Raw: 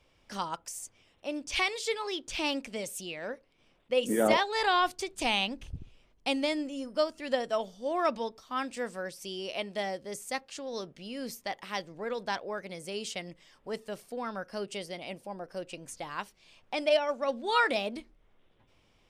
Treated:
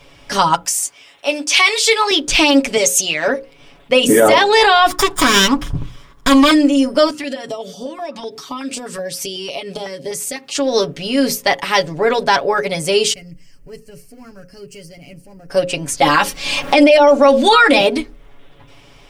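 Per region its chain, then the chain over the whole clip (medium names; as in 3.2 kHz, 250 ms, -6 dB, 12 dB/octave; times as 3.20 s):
0.65–2.11 s: high-pass 930 Hz 6 dB/octave + doubling 18 ms -12 dB
2.77–3.28 s: high-pass 360 Hz 6 dB/octave + peaking EQ 6.5 kHz +10.5 dB 0.31 oct
4.90–6.51 s: comb filter that takes the minimum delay 0.57 ms + peaking EQ 1.1 kHz +13.5 dB 0.55 oct
7.11–10.55 s: high-pass 120 Hz + compression 10:1, threshold -41 dBFS + step-sequenced notch 8 Hz 490–1900 Hz
13.13–15.50 s: companding laws mixed up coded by mu + Butterworth band-stop 3.6 kHz, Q 2.9 + amplifier tone stack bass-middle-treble 10-0-1
16.01–17.81 s: bass shelf 190 Hz +5 dB + comb 3.7 ms, depth 56% + three bands compressed up and down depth 100%
whole clip: hum notches 60/120/180/240/300/360/420/480/540 Hz; comb 7.1 ms, depth 76%; loudness maximiser +21 dB; trim -1 dB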